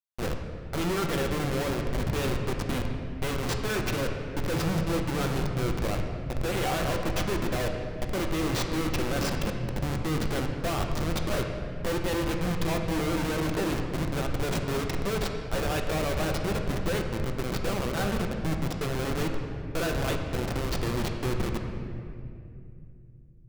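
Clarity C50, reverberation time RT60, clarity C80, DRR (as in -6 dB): 4.5 dB, 2.5 s, 5.5 dB, 2.5 dB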